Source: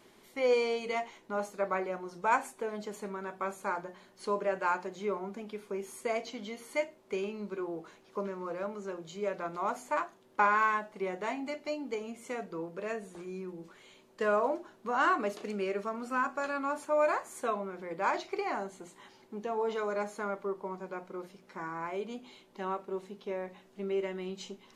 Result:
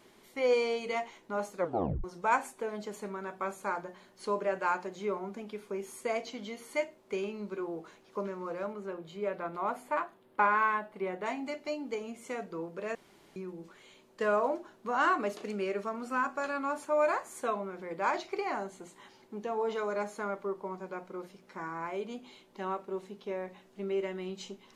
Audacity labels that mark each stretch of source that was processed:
1.580000	1.580000	tape stop 0.46 s
8.730000	11.260000	bell 6300 Hz -12.5 dB 0.89 oct
12.950000	13.360000	room tone

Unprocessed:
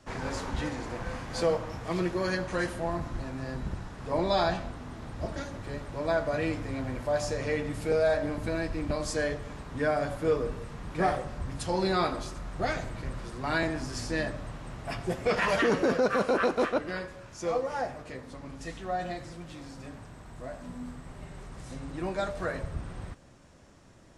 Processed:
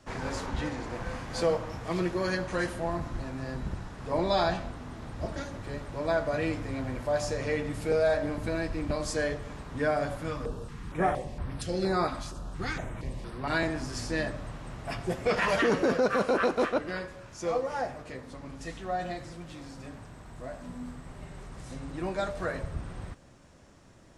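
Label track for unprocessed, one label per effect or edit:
0.460000	0.930000	high shelf 8800 Hz -7 dB
10.220000	13.500000	stepped notch 4.3 Hz 420–6900 Hz

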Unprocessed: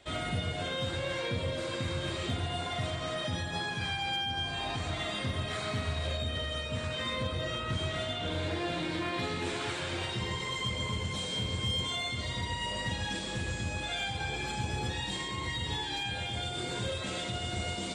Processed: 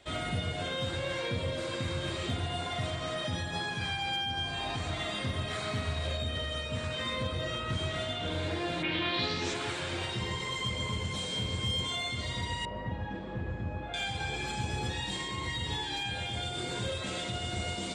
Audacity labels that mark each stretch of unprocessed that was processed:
8.820000	9.530000	synth low-pass 2500 Hz -> 6600 Hz, resonance Q 3.3
12.650000	13.940000	LPF 1200 Hz

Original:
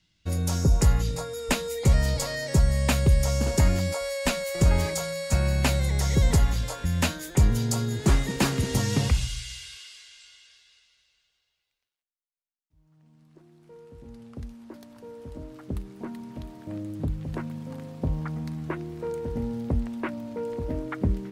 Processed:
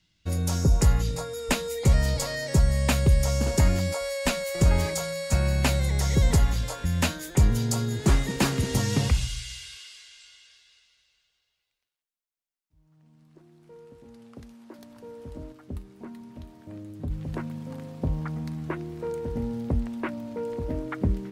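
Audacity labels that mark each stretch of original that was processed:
13.930000	14.790000	HPF 260 Hz 6 dB/oct
15.520000	17.110000	resonator 82 Hz, decay 0.16 s, harmonics odd

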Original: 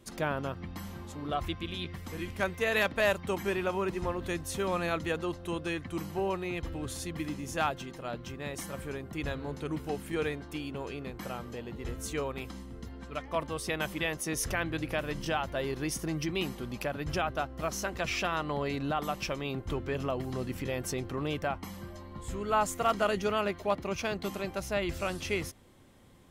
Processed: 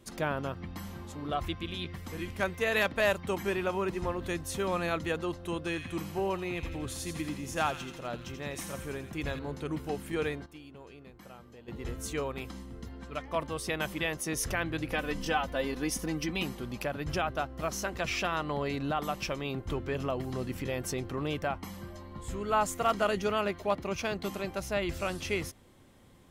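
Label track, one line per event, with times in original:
5.580000	9.390000	thin delay 84 ms, feedback 56%, high-pass 2000 Hz, level -6.5 dB
10.460000	11.680000	gain -11.5 dB
14.910000	16.430000	comb 4 ms

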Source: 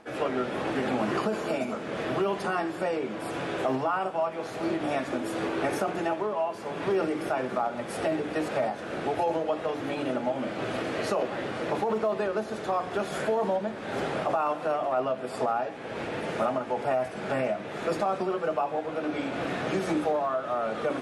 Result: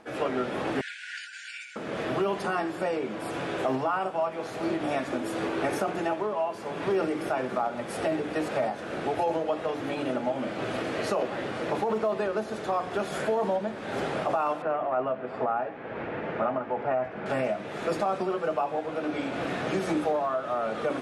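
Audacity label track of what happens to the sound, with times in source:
0.810000	1.760000	brick-wall FIR band-pass 1400–9800 Hz
14.620000	17.260000	Chebyshev low-pass 1900 Hz

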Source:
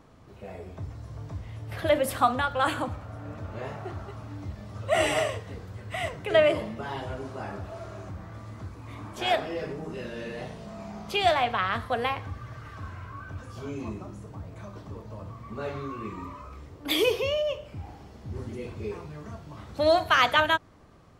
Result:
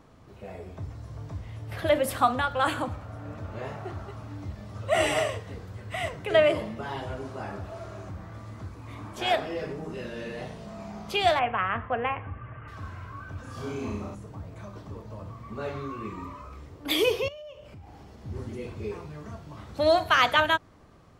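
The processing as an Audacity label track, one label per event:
11.390000	12.680000	elliptic low-pass 2800 Hz
13.410000	14.150000	flutter echo walls apart 5.8 m, dies away in 0.82 s
17.280000	18.220000	compressor 5:1, threshold -43 dBFS

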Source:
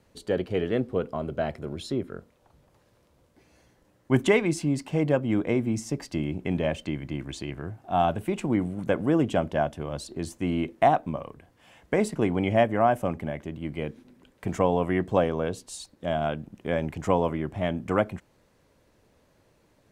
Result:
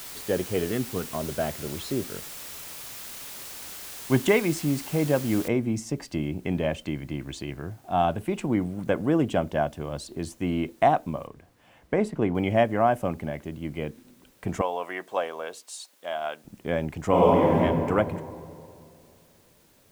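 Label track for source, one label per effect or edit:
0.720000	1.150000	bell 550 Hz -13 dB 0.5 oct
5.480000	5.480000	noise floor step -40 dB -63 dB
11.270000	12.350000	high shelf 3500 Hz -11 dB
14.610000	16.450000	HPF 680 Hz
17.080000	17.580000	reverb throw, RT60 2.5 s, DRR -6.5 dB

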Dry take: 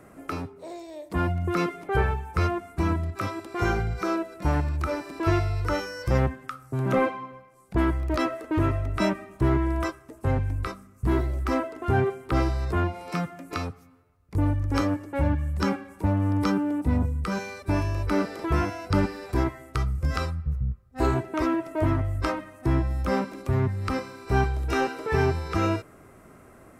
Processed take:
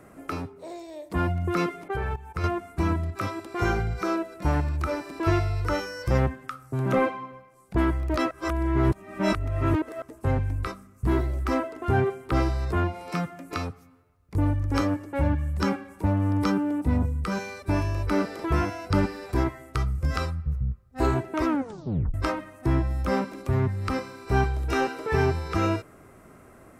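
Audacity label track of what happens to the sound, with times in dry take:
1.880000	2.440000	level quantiser steps of 14 dB
8.310000	10.020000	reverse
21.480000	21.480000	tape stop 0.66 s

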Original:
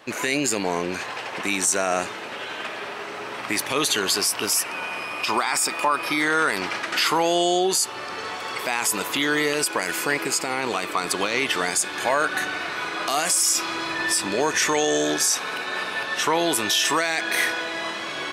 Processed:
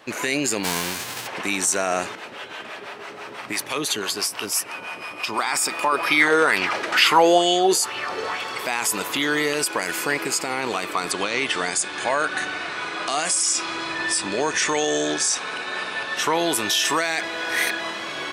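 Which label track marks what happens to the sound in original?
0.630000	1.260000	spectral whitening exponent 0.3
2.150000	5.390000	harmonic tremolo 6 Hz, crossover 510 Hz
5.920000	8.440000	LFO bell 2.2 Hz 390–2900 Hz +11 dB
11.110000	16.170000	Chebyshev low-pass 9900 Hz, order 6
17.230000	17.790000	reverse

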